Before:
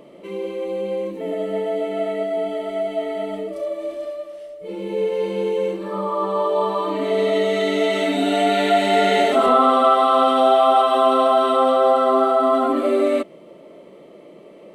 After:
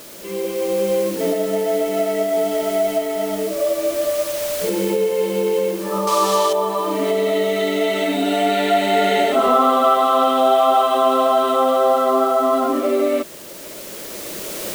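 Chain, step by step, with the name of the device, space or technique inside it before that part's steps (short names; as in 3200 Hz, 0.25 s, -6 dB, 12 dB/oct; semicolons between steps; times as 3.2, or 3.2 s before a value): cheap recorder with automatic gain (white noise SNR 21 dB; recorder AGC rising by 7.4 dB/s); 6.07–6.53 bell 4900 Hz +15 dB 2.8 oct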